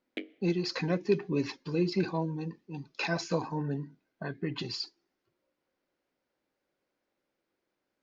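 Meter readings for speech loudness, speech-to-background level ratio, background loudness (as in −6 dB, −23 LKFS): −33.0 LKFS, 11.5 dB, −44.5 LKFS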